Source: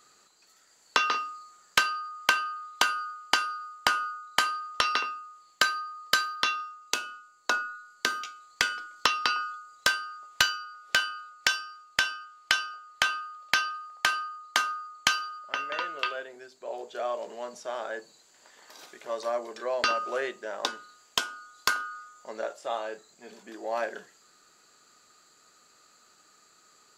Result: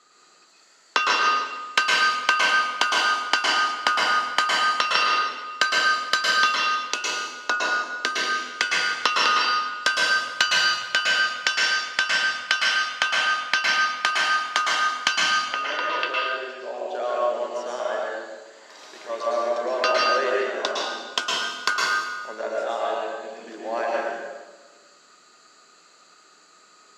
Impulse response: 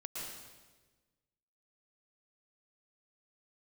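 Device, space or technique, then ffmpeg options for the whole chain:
supermarket ceiling speaker: -filter_complex "[0:a]highpass=210,lowpass=6500[s0];[1:a]atrim=start_sample=2205[s1];[s0][s1]afir=irnorm=-1:irlink=0,volume=2.51"

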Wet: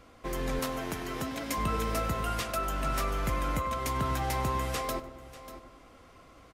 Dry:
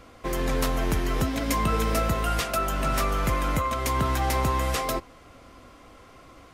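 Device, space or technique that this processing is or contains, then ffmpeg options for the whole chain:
ducked delay: -filter_complex "[0:a]asettb=1/sr,asplit=3[s0][s1][s2];[s0]atrim=end=0.594[s3];[s1]atrim=start=0.59:end=1.58,asetpts=PTS-STARTPTS,afade=t=in:d=0.004:c=qsin,afade=t=out:st=0.986:d=0.004:c=qsin,highpass=f=240:p=1[s4];[s2]atrim=start=1.576[s5];[s3][s4]acrossfade=d=0.004:c1=hsin:c2=qsin[s6];[s6][s5]acrossfade=d=0.004:c1=qsin:c2=hsin,asplit=2[s7][s8];[s8]adelay=99,lowpass=f=1700:p=1,volume=0.282,asplit=2[s9][s10];[s10]adelay=99,lowpass=f=1700:p=1,volume=0.54,asplit=2[s11][s12];[s12]adelay=99,lowpass=f=1700:p=1,volume=0.54,asplit=2[s13][s14];[s14]adelay=99,lowpass=f=1700:p=1,volume=0.54,asplit=2[s15][s16];[s16]adelay=99,lowpass=f=1700:p=1,volume=0.54,asplit=2[s17][s18];[s18]adelay=99,lowpass=f=1700:p=1,volume=0.54[s19];[s7][s9][s11][s13][s15][s17][s19]amix=inputs=7:normalize=0,asplit=3[s20][s21][s22];[s21]adelay=591,volume=0.447[s23];[s22]apad=whole_len=330293[s24];[s23][s24]sidechaincompress=threshold=0.00708:ratio=4:attack=6.2:release=601[s25];[s20][s25]amix=inputs=2:normalize=0,volume=0.501"

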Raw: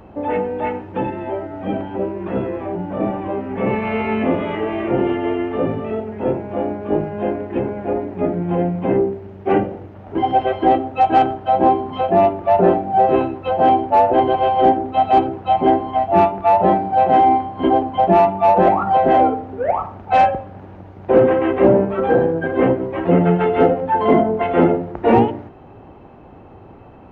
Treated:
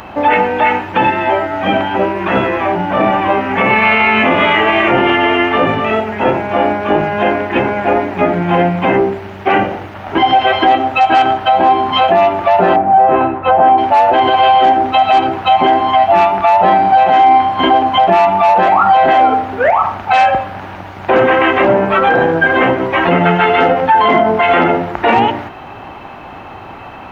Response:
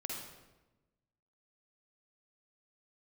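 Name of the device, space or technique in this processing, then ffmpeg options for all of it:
mastering chain: -filter_complex "[0:a]asettb=1/sr,asplit=3[s0][s1][s2];[s0]atrim=end=12.764[s3];[s1]atrim=start=12.76:end=13.78,asetpts=PTS-STARTPTS,afade=t=in:d=0.004:c=qsin,afade=t=out:st=1.016:d=0.004:c=qsin,lowpass=1400[s4];[s2]atrim=start=13.776[s5];[s3][s4]acrossfade=d=0.004:c1=hsin:c2=qsin[s6];[s6][s5]acrossfade=d=0.004:c1=qsin:c2=hsin,equalizer=f=390:t=o:w=0.77:g=-2,equalizer=f=480:t=o:w=0.53:g=-4.5,acompressor=threshold=0.141:ratio=2.5,tiltshelf=f=650:g=-9.5,alimiter=level_in=5.62:limit=0.891:release=50:level=0:latency=1,volume=0.891"

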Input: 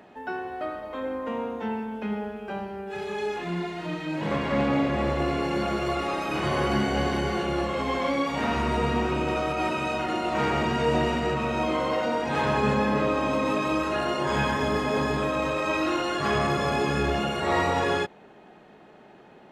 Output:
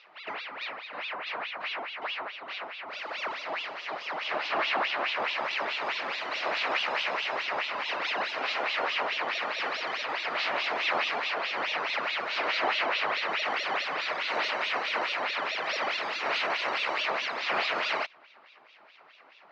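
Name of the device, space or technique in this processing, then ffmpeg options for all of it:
voice changer toy: -af "aeval=exprs='val(0)*sin(2*PI*1800*n/s+1800*0.75/4.7*sin(2*PI*4.7*n/s))':c=same,highpass=500,equalizer=f=630:t=q:w=4:g=4,equalizer=f=1600:t=q:w=4:g=-3,equalizer=f=3400:t=q:w=4:g=-7,lowpass=f=4800:w=0.5412,lowpass=f=4800:w=1.3066"

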